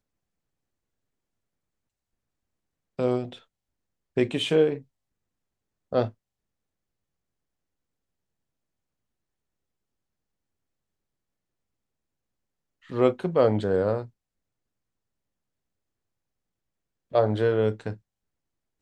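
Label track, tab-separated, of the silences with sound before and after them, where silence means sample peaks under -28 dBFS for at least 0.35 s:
3.240000	4.170000	silence
4.760000	5.930000	silence
6.070000	12.920000	silence
14.020000	17.140000	silence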